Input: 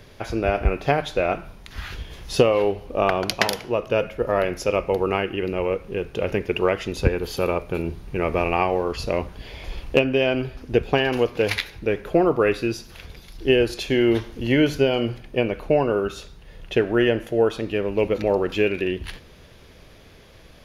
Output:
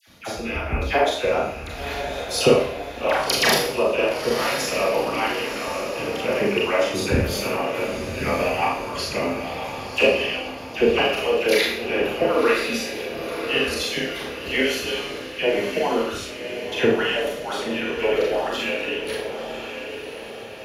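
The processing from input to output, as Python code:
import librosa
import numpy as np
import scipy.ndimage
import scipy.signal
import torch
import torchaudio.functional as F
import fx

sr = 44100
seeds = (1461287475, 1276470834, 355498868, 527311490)

p1 = fx.hpss_only(x, sr, part='percussive')
p2 = scipy.signal.sosfilt(scipy.signal.butter(2, 64.0, 'highpass', fs=sr, output='sos'), p1)
p3 = fx.high_shelf(p2, sr, hz=4000.0, db=5.5)
p4 = fx.dispersion(p3, sr, late='lows', ms=77.0, hz=1200.0)
p5 = p4 + fx.echo_diffused(p4, sr, ms=1065, feedback_pct=51, wet_db=-8.0, dry=0)
p6 = fx.rev_schroeder(p5, sr, rt60_s=0.57, comb_ms=27, drr_db=-3.0)
y = F.gain(torch.from_numpy(p6), -1.0).numpy()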